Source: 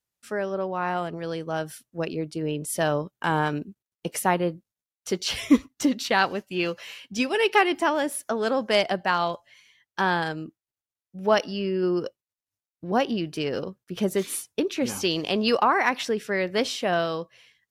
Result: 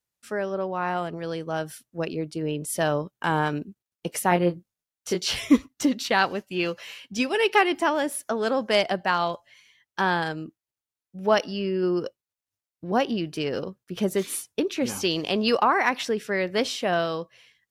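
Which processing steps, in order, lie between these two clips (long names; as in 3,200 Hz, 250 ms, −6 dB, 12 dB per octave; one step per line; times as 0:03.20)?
0:04.29–0:05.39: double-tracking delay 23 ms −4 dB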